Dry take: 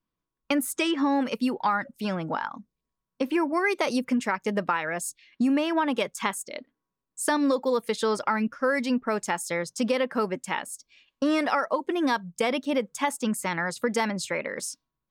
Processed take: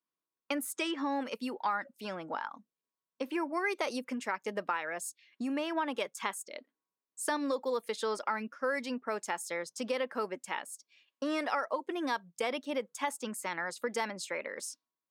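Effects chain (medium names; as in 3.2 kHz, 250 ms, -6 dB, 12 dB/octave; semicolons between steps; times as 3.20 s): high-pass 310 Hz 12 dB/octave; trim -7 dB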